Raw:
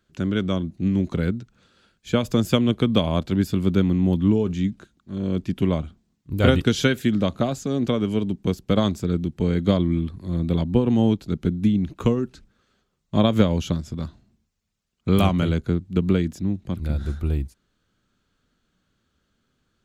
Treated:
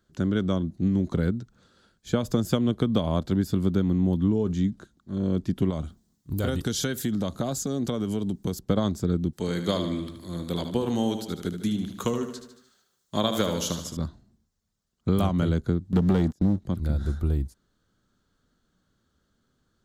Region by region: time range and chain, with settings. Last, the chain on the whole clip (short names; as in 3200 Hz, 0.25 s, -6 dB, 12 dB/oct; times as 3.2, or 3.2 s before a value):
5.7–8.59 high shelf 5100 Hz +11.5 dB + compressor 3:1, threshold -24 dBFS
9.33–13.97 tilt +3.5 dB/oct + feedback echo 75 ms, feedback 54%, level -9 dB
15.92–16.59 gate -35 dBFS, range -18 dB + sample leveller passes 2
whole clip: bell 2500 Hz -10.5 dB 0.6 oct; compressor 4:1, threshold -19 dBFS